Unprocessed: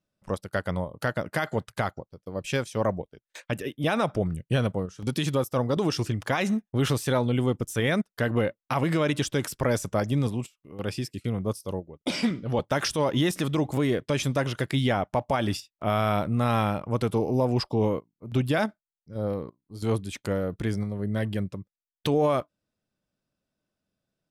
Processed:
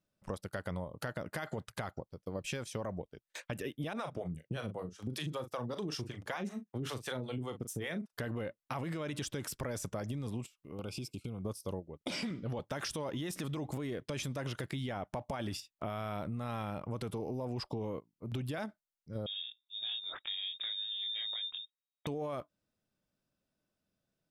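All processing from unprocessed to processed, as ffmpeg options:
ffmpeg -i in.wav -filter_complex "[0:a]asettb=1/sr,asplit=3[link_01][link_02][link_03];[link_01]atrim=end=3.934[link_04];[link_02]atrim=start=3.93:end=8.13,asetpts=PTS-STARTPTS,afade=type=in:duration=0.004:curve=qsin,afade=type=out:start_time=4.196:duration=0.004:curve=qsin,highpass=94,acrossover=split=470[link_05][link_06];[link_05]aeval=exprs='val(0)*(1-1/2+1/2*cos(2*PI*5.2*n/s))':channel_layout=same[link_07];[link_06]aeval=exprs='val(0)*(1-1/2-1/2*cos(2*PI*5.2*n/s))':channel_layout=same[link_08];[link_07][link_08]amix=inputs=2:normalize=0,asplit=2[link_09][link_10];[link_10]adelay=39,volume=-11dB[link_11];[link_09][link_11]amix=inputs=2:normalize=0,atrim=end_sample=185220[link_12];[link_03]atrim=start=8.126[link_13];[link_04][link_12]acrossfade=duration=0.004:curve1=hsin:curve2=qsin[link_14];[link_14][link_13]acrossfade=duration=0.004:curve1=qsin:curve2=hsin,asettb=1/sr,asplit=3[link_15][link_16][link_17];[link_15]atrim=end=10.754[link_18];[link_16]atrim=start=10.75:end=11.45,asetpts=PTS-STARTPTS,afade=type=in:duration=0.004:curve=qsin,afade=type=out:start_time=0.696:duration=0.004:curve=qsin,asuperstop=centerf=1800:order=12:qfactor=3,acompressor=threshold=-35dB:ratio=5:attack=3.2:release=140:knee=1:detection=peak[link_19];[link_17]atrim=start=11.446[link_20];[link_18][link_19]acrossfade=duration=0.004:curve1=hsin:curve2=qsin[link_21];[link_21][link_20]acrossfade=duration=0.004:curve1=qsin:curve2=hsin,asettb=1/sr,asplit=3[link_22][link_23][link_24];[link_22]atrim=end=19.264[link_25];[link_23]atrim=start=19.26:end=22.07,asetpts=PTS-STARTPTS,afade=type=in:duration=0.004:curve=qsin,afade=type=out:start_time=2.806:duration=0.004:curve=qsin,flanger=delay=19:depth=6.8:speed=2,acompressor=threshold=-31dB:ratio=2.5:attack=3.2:release=140:knee=1:detection=peak,lowpass=frequency=3200:width_type=q:width=0.5098,lowpass=frequency=3200:width_type=q:width=0.6013,lowpass=frequency=3200:width_type=q:width=0.9,lowpass=frequency=3200:width_type=q:width=2.563,afreqshift=-3800[link_26];[link_24]atrim=start=22.066[link_27];[link_25][link_26]acrossfade=duration=0.004:curve1=hsin:curve2=qsin[link_28];[link_28][link_27]acrossfade=duration=0.004:curve1=qsin:curve2=hsin,alimiter=limit=-21.5dB:level=0:latency=1:release=23,acompressor=threshold=-33dB:ratio=6,volume=-2dB" out.wav

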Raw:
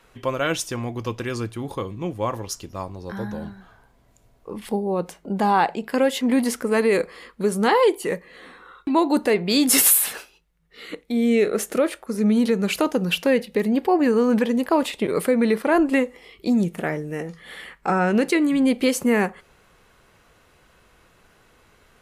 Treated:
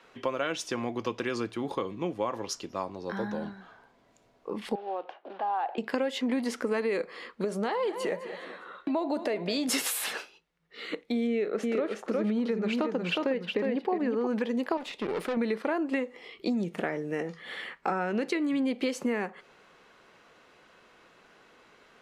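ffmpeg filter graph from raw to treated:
ffmpeg -i in.wav -filter_complex "[0:a]asettb=1/sr,asplit=3[link_01][link_02][link_03];[link_01]atrim=end=4.754[link_04];[link_02]atrim=start=4.75:end=5.78,asetpts=PTS-STARTPTS,afade=type=in:duration=0.004:curve=qsin,afade=type=out:start_time=1.026:duration=0.004:curve=qsin,acompressor=threshold=-31dB:ratio=3:attack=3.2:release=140:knee=1:detection=peak,acrusher=bits=4:mode=log:mix=0:aa=0.000001,highpass=frequency=370:width=0.5412,highpass=frequency=370:width=1.3066,equalizer=frequency=440:width_type=q:width=4:gain=-7,equalizer=frequency=750:width_type=q:width=4:gain=8,equalizer=frequency=2100:width_type=q:width=4:gain=-8,lowpass=frequency=3000:width=0.5412,lowpass=frequency=3000:width=1.3066[link_05];[link_03]atrim=start=5.776[link_06];[link_04][link_05]acrossfade=duration=0.004:curve1=hsin:curve2=qsin[link_07];[link_07][link_06]acrossfade=duration=0.004:curve1=qsin:curve2=hsin,asettb=1/sr,asplit=3[link_08][link_09][link_10];[link_08]atrim=end=7.444[link_11];[link_09]atrim=start=7.44:end=9.69,asetpts=PTS-STARTPTS,afade=type=in:duration=0.004:curve=qsin,afade=type=out:start_time=2.246:duration=0.004:curve=qsin,equalizer=frequency=630:width=7.1:gain=13,aecho=1:1:205|410|615:0.126|0.0529|0.0222,atrim=end_sample=99225,acompressor=threshold=-26dB:ratio=2:attack=3.2:release=140:knee=1:detection=peak[link_12];[link_10]atrim=start=9.686[link_13];[link_11][link_12]acrossfade=duration=0.004:curve1=hsin:curve2=qsin[link_14];[link_14][link_13]acrossfade=duration=0.004:curve1=qsin:curve2=hsin,asettb=1/sr,asplit=3[link_15][link_16][link_17];[link_15]atrim=end=11.274[link_18];[link_16]atrim=start=11.27:end=14.27,asetpts=PTS-STARTPTS,afade=type=in:duration=0.004:curve=qsin,afade=type=out:start_time=2.996:duration=0.004:curve=qsin,lowpass=frequency=2600:poles=1,aecho=1:1:362:0.596,atrim=end_sample=132300[link_19];[link_17]atrim=start=14.266[link_20];[link_18][link_19]acrossfade=duration=0.004:curve1=hsin:curve2=qsin[link_21];[link_21][link_20]acrossfade=duration=0.004:curve1=qsin:curve2=hsin,asettb=1/sr,asplit=3[link_22][link_23][link_24];[link_22]atrim=end=14.774[link_25];[link_23]atrim=start=14.77:end=15.37,asetpts=PTS-STARTPTS,afade=type=in:duration=0.004:curve=qsin,afade=type=out:start_time=0.596:duration=0.004:curve=qsin,equalizer=frequency=8400:width=7.1:gain=-5,aeval=exprs='(tanh(17.8*val(0)+0.7)-tanh(0.7))/17.8':channel_layout=same[link_26];[link_24]atrim=start=15.366[link_27];[link_25][link_26]acrossfade=duration=0.004:curve1=hsin:curve2=qsin[link_28];[link_28][link_27]acrossfade=duration=0.004:curve1=qsin:curve2=hsin,acrossover=split=180 6400:gain=0.112 1 0.158[link_29][link_30][link_31];[link_29][link_30][link_31]amix=inputs=3:normalize=0,acompressor=threshold=-26dB:ratio=6" out.wav

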